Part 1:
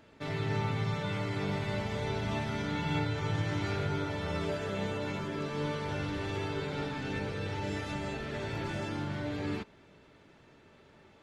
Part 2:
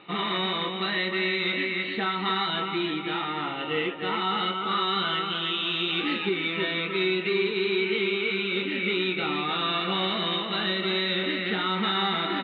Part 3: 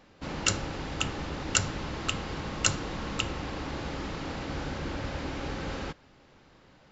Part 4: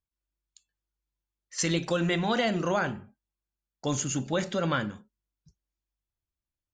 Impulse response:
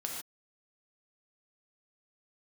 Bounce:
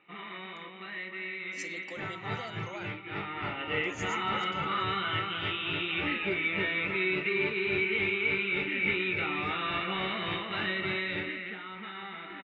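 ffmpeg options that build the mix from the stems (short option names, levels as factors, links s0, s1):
-filter_complex "[0:a]lowpass=f=2400:t=q:w=2.9,aeval=exprs='val(0)*pow(10,-21*(0.5-0.5*cos(2*PI*3.5*n/s))/20)':c=same,adelay=1750,volume=0.631[s0];[1:a]lowpass=f=2300:t=q:w=2.5,volume=0.447,afade=t=in:st=3.02:d=0.56:silence=0.334965,afade=t=out:st=10.84:d=0.76:silence=0.298538[s1];[3:a]highpass=320,volume=0.168[s2];[s0][s1][s2]amix=inputs=3:normalize=0"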